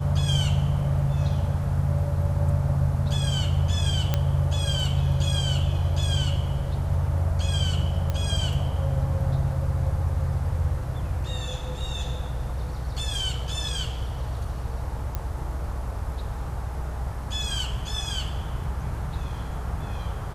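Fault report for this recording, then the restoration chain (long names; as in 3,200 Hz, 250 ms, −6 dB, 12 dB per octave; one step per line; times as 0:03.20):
0:04.14: click −9 dBFS
0:08.10: click −15 dBFS
0:15.15: click −15 dBFS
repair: click removal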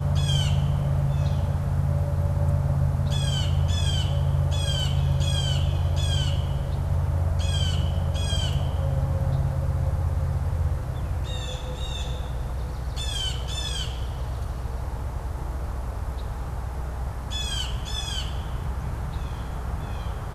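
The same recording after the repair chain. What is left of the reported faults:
none of them is left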